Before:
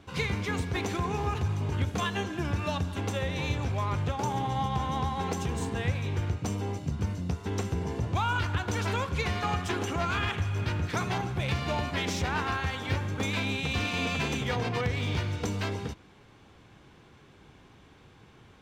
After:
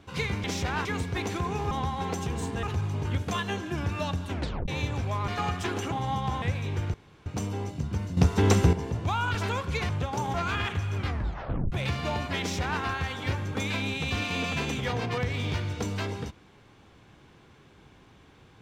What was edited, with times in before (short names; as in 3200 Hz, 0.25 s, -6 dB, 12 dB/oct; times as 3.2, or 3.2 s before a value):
2.98 tape stop 0.37 s
3.95–4.4 swap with 9.33–9.97
4.9–5.82 move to 1.3
6.34 insert room tone 0.32 s
7.25–7.81 gain +10.5 dB
8.43–8.79 cut
10.59 tape stop 0.76 s
12.03–12.44 copy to 0.44